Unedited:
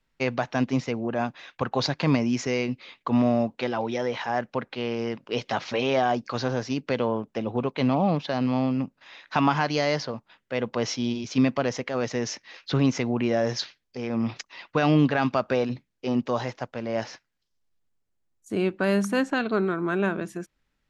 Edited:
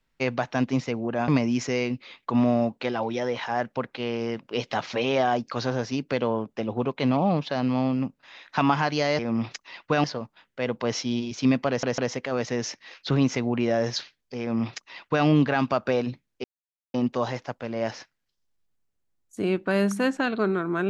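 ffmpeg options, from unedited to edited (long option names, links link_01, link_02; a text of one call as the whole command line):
ffmpeg -i in.wav -filter_complex "[0:a]asplit=7[link_01][link_02][link_03][link_04][link_05][link_06][link_07];[link_01]atrim=end=1.282[link_08];[link_02]atrim=start=2.058:end=9.972[link_09];[link_03]atrim=start=14.038:end=14.892[link_10];[link_04]atrim=start=9.968:end=11.762[link_11];[link_05]atrim=start=11.608:end=11.762[link_12];[link_06]atrim=start=11.608:end=16.07,asetpts=PTS-STARTPTS,afade=type=out:start_time=4.458:duration=0.004:curve=hsin,apad=pad_dur=0.5[link_13];[link_07]atrim=start=16.07,asetpts=PTS-STARTPTS,afade=type=in:duration=0.004:curve=hsin[link_14];[link_08][link_09]acrossfade=duration=0.004:curve1=hsin:curve2=hsin[link_15];[link_15][link_10]acrossfade=duration=0.004:curve1=hsin:curve2=hsin[link_16];[link_16][link_11]acrossfade=duration=0.004:curve1=hsin:curve2=hsin[link_17];[link_17][link_12]acrossfade=duration=0.004:curve1=hsin:curve2=hsin[link_18];[link_13][link_14]concat=n=2:v=0:a=1[link_19];[link_18][link_19]acrossfade=duration=0.004:curve1=hsin:curve2=hsin" out.wav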